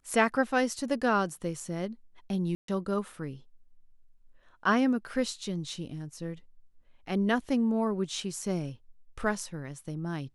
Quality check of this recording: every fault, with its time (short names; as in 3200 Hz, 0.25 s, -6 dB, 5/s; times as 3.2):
2.55–2.68 gap 0.133 s